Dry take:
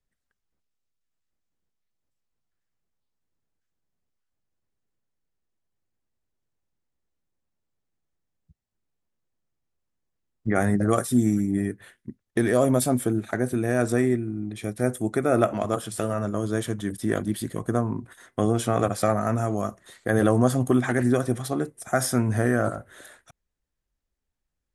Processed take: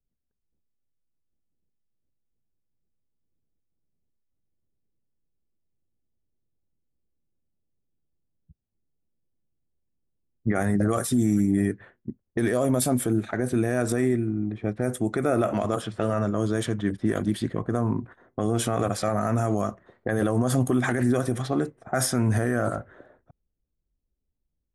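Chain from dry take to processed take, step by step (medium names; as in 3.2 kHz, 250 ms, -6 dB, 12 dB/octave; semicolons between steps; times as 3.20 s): level-controlled noise filter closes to 410 Hz, open at -20 dBFS; peak limiter -17.5 dBFS, peak gain reduction 10.5 dB; level rider gain up to 3.5 dB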